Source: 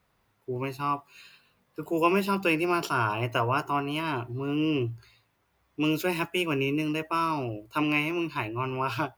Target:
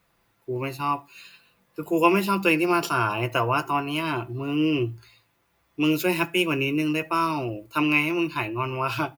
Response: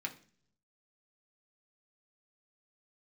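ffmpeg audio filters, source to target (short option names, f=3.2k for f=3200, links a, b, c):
-filter_complex "[0:a]aecho=1:1:5.9:0.35,asplit=2[a][b];[1:a]atrim=start_sample=2205,afade=t=out:st=0.16:d=0.01,atrim=end_sample=7497,highshelf=f=6k:g=12[c];[b][c]afir=irnorm=-1:irlink=0,volume=-12.5dB[d];[a][d]amix=inputs=2:normalize=0,volume=2dB"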